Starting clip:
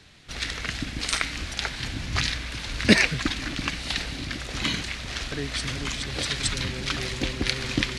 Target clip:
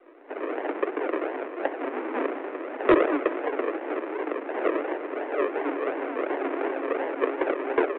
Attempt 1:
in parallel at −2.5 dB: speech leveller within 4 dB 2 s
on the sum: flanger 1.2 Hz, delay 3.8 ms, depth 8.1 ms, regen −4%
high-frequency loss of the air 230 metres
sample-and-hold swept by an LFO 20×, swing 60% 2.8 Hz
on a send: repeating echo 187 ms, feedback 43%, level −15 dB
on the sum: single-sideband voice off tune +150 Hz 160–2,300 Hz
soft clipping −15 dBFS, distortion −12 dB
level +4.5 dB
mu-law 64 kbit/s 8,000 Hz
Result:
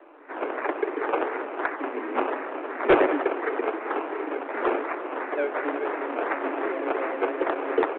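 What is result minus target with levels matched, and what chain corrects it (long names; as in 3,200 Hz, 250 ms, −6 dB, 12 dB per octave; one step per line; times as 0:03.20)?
sample-and-hold swept by an LFO: distortion −4 dB
in parallel at −2.5 dB: speech leveller within 4 dB 2 s
on the sum: flanger 1.2 Hz, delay 3.8 ms, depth 8.1 ms, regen −4%
high-frequency loss of the air 230 metres
sample-and-hold swept by an LFO 53×, swing 60% 2.8 Hz
on a send: repeating echo 187 ms, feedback 43%, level −15 dB
on the sum: single-sideband voice off tune +150 Hz 160–2,300 Hz
soft clipping −15 dBFS, distortion −14 dB
level +4.5 dB
mu-law 64 kbit/s 8,000 Hz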